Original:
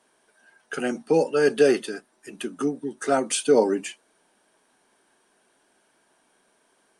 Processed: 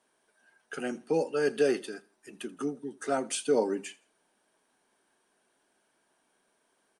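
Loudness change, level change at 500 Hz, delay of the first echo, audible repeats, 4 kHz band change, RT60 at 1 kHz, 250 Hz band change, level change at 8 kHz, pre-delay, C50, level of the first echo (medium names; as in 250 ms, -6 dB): -7.0 dB, -7.5 dB, 82 ms, 2, -7.5 dB, no reverb, -7.5 dB, -7.5 dB, no reverb, no reverb, -22.0 dB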